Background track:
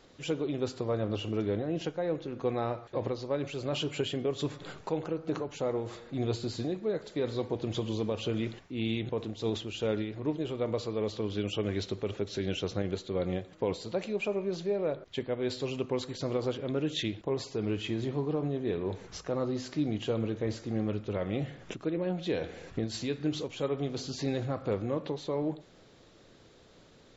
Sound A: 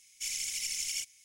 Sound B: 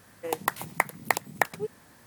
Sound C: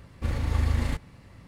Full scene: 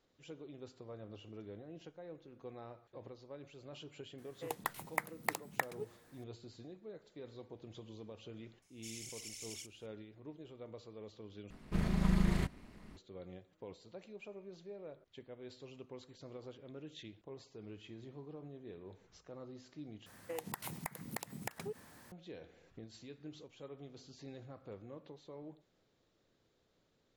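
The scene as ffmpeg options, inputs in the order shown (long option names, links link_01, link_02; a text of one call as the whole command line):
ffmpeg -i bed.wav -i cue0.wav -i cue1.wav -i cue2.wav -filter_complex "[2:a]asplit=2[link_01][link_02];[0:a]volume=-18.5dB[link_03];[3:a]aeval=exprs='val(0)*sin(2*PI*110*n/s)':channel_layout=same[link_04];[link_02]acompressor=threshold=-35dB:ratio=6:attack=3.2:release=140:knee=1:detection=peak[link_05];[link_03]asplit=3[link_06][link_07][link_08];[link_06]atrim=end=11.504[link_09];[link_04]atrim=end=1.47,asetpts=PTS-STARTPTS,volume=-2.5dB[link_10];[link_07]atrim=start=12.966:end=20.064[link_11];[link_05]atrim=end=2.06,asetpts=PTS-STARTPTS,volume=-3dB[link_12];[link_08]atrim=start=22.116[link_13];[link_01]atrim=end=2.06,asetpts=PTS-STARTPTS,volume=-11dB,afade=type=in:duration=0.004:curve=hsin,afade=type=out:start_time=2.056:duration=0.004:curve=hsin,adelay=4180[link_14];[1:a]atrim=end=1.24,asetpts=PTS-STARTPTS,volume=-14dB,afade=type=in:duration=0.004:curve=hsin,afade=type=out:start_time=1.236:duration=0.004:curve=hsin,adelay=8620[link_15];[link_09][link_10]acrossfade=duration=0.004:curve1=hsin:curve2=hsin[link_16];[link_16][link_11]acrossfade=duration=0.004:curve1=hsin:curve2=hsin[link_17];[link_17][link_12]acrossfade=duration=0.004:curve1=hsin:curve2=hsin[link_18];[link_18][link_13]acrossfade=duration=0.004:curve1=hsin:curve2=hsin[link_19];[link_19][link_14][link_15]amix=inputs=3:normalize=0" out.wav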